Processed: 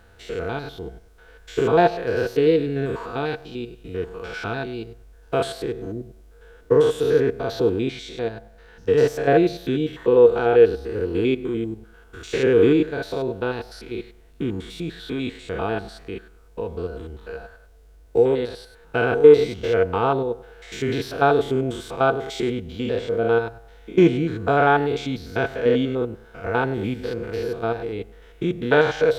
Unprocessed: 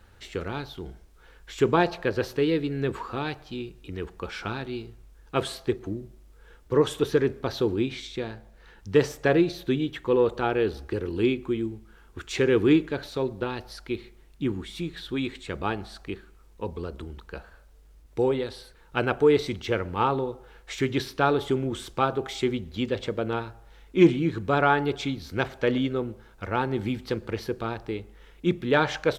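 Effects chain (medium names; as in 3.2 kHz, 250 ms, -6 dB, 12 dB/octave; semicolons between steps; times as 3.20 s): spectrogram pixelated in time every 100 ms; small resonant body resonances 470/680/1500 Hz, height 13 dB, ringing for 100 ms; trim +3.5 dB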